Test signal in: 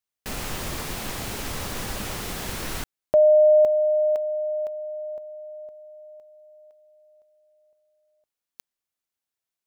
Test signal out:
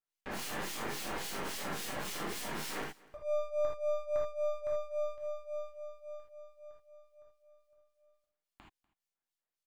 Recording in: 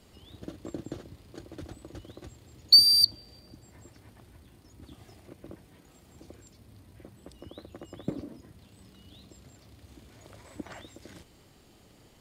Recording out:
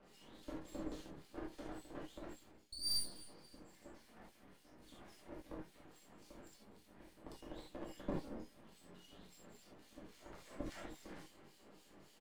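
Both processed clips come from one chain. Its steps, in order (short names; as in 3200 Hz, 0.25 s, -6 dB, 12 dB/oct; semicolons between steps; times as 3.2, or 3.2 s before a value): HPF 190 Hz 24 dB/oct; high shelf 7200 Hz -6.5 dB; reverse; compressor 10:1, threshold -31 dBFS; reverse; harmonic tremolo 3.6 Hz, depth 100%, crossover 2200 Hz; frequency shift -13 Hz; half-wave rectifier; on a send: echo 0.244 s -23 dB; on the sum: non-linear reverb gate 0.1 s flat, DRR -4.5 dB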